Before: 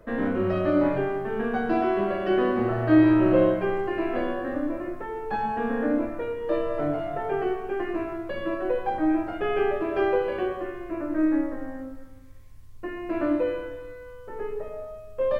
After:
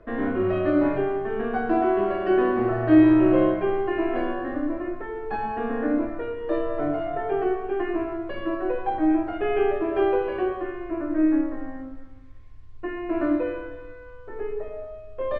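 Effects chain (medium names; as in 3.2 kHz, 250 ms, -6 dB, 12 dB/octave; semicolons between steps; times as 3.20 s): low-pass 3.4 kHz 12 dB/octave; comb 2.8 ms, depth 41%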